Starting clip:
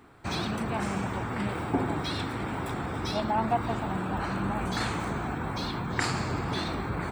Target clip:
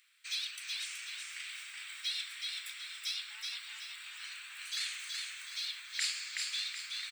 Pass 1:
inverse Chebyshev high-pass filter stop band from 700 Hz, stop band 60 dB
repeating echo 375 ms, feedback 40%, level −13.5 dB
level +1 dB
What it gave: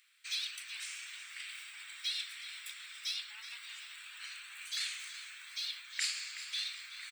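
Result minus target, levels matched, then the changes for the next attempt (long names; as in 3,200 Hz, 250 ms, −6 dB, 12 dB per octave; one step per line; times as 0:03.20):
echo-to-direct −10 dB
change: repeating echo 375 ms, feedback 40%, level −3.5 dB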